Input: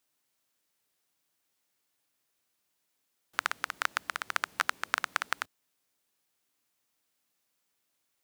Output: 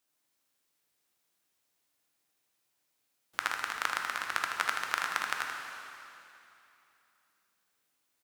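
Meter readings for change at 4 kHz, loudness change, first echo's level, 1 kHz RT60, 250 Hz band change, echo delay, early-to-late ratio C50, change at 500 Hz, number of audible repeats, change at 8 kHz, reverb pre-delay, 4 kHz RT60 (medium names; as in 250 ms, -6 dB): 0.0 dB, 0.0 dB, -5.5 dB, 2.9 s, +0.5 dB, 79 ms, 1.0 dB, 0.0 dB, 1, +0.5 dB, 6 ms, 2.7 s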